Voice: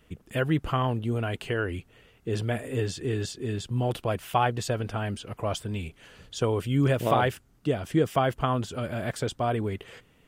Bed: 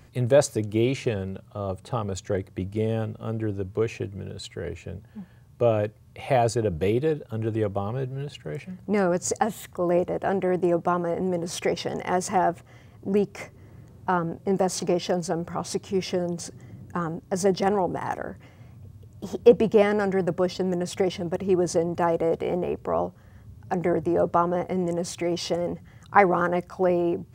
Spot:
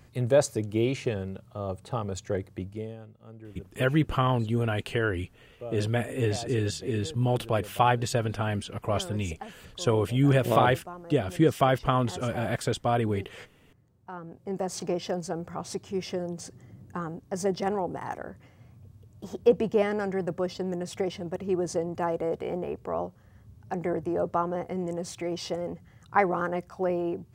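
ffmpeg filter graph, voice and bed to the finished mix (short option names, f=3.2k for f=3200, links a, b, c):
-filter_complex "[0:a]adelay=3450,volume=1.5dB[a];[1:a]volume=9dB,afade=t=out:st=2.48:d=0.49:silence=0.188365,afade=t=in:st=14.12:d=0.72:silence=0.251189[b];[a][b]amix=inputs=2:normalize=0"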